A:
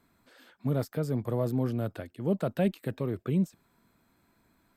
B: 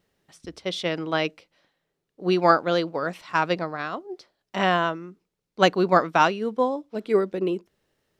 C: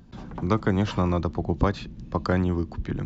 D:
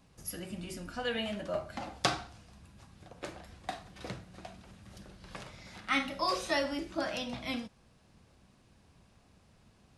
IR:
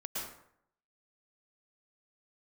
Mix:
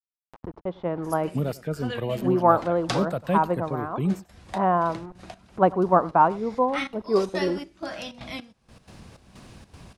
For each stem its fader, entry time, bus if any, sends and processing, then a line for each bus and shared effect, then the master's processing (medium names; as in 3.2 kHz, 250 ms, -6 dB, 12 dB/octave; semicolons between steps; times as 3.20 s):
+2.5 dB, 0.70 s, no send, echo send -20 dB, level-controlled noise filter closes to 2.1 kHz, open at -27 dBFS; reverb removal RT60 1.8 s
-4.5 dB, 0.00 s, no send, echo send -22 dB, bit crusher 7-bit; resonant low-pass 960 Hz, resonance Q 2.3; bass shelf 170 Hz +10.5 dB
mute
0.0 dB, 0.85 s, no send, no echo send, trance gate "..x.xxx..xxx.xx." 157 bpm -12 dB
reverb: none
echo: delay 95 ms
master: upward compressor, threshold -31 dBFS